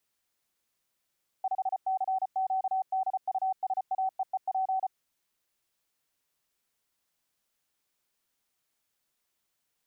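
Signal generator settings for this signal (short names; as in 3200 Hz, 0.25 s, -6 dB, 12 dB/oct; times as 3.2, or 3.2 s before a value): Morse "5CQDUSAEEP" 34 wpm 760 Hz -25.5 dBFS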